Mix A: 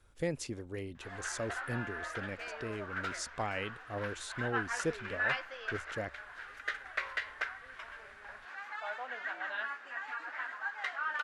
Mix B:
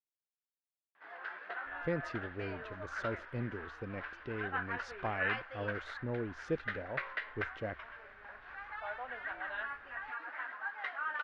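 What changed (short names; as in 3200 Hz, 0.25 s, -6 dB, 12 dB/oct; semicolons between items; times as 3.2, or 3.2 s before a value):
speech: entry +1.65 s; master: add air absorption 290 m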